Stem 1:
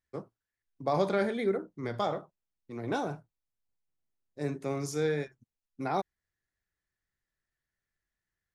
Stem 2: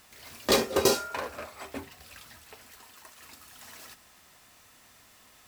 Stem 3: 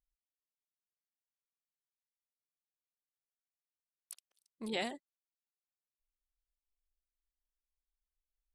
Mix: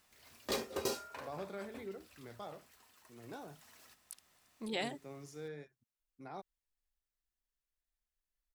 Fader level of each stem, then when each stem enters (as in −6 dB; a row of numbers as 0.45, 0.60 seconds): −16.5, −13.5, −1.0 decibels; 0.40, 0.00, 0.00 seconds